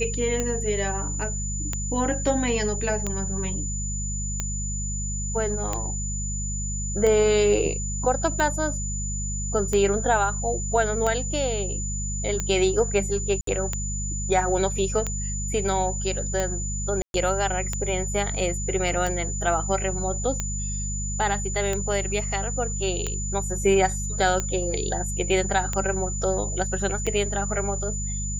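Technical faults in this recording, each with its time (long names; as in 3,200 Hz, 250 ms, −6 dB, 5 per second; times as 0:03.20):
mains hum 50 Hz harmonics 4 −30 dBFS
scratch tick 45 rpm −12 dBFS
whistle 7,000 Hz −31 dBFS
0:13.41–0:13.47: drop-out 63 ms
0:17.02–0:17.14: drop-out 122 ms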